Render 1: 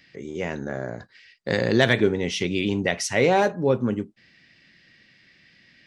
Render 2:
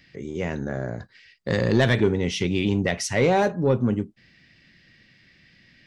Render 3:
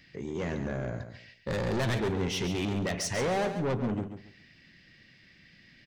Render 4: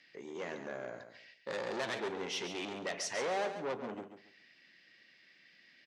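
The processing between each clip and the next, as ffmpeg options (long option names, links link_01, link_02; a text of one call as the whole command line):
ffmpeg -i in.wav -af "lowshelf=frequency=150:gain=10.5,acontrast=72,volume=-7.5dB" out.wav
ffmpeg -i in.wav -filter_complex "[0:a]asoftclip=type=tanh:threshold=-24.5dB,asplit=2[link_01][link_02];[link_02]aecho=0:1:138|276|414:0.335|0.0837|0.0209[link_03];[link_01][link_03]amix=inputs=2:normalize=0,volume=-2dB" out.wav
ffmpeg -i in.wav -af "highpass=410,lowpass=7900,volume=-4dB" out.wav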